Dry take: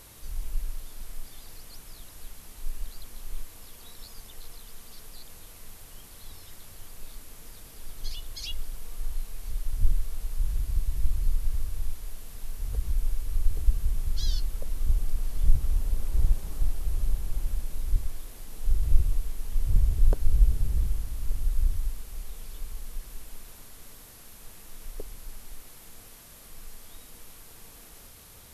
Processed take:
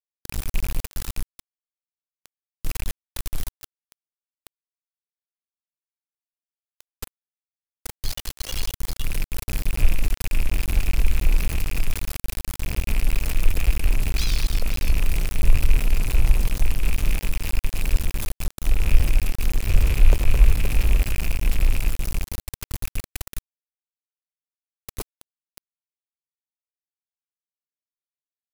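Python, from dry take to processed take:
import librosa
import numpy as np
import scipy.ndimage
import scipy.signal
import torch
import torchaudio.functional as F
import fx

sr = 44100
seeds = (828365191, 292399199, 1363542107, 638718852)

y = fx.rattle_buzz(x, sr, strikes_db=-32.0, level_db=-26.0)
y = fx.echo_multitap(y, sr, ms=(82, 109, 214, 520), db=(-13.0, -14.0, -7.0, -9.0))
y = np.where(np.abs(y) >= 10.0 ** (-28.0 / 20.0), y, 0.0)
y = y * librosa.db_to_amplitude(4.5)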